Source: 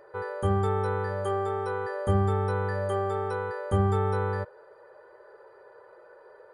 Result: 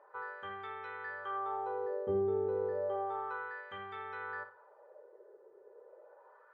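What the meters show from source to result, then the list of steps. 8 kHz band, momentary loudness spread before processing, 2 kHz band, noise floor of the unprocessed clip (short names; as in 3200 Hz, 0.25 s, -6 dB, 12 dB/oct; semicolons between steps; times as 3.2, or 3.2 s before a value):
n/a, 6 LU, -5.0 dB, -54 dBFS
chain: LFO band-pass sine 0.32 Hz 370–2100 Hz; synth low-pass 3300 Hz, resonance Q 2; flutter echo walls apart 10.1 m, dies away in 0.31 s; gain -2.5 dB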